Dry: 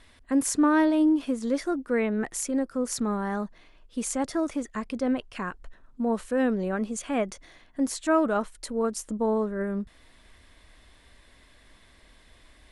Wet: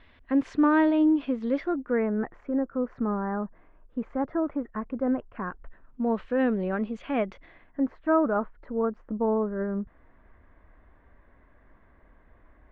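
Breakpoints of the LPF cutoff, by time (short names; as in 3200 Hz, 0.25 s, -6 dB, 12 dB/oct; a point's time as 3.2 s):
LPF 24 dB/oct
1.59 s 3200 Hz
2.08 s 1600 Hz
5.4 s 1600 Hz
6.09 s 3100 Hz
7.32 s 3100 Hz
7.96 s 1600 Hz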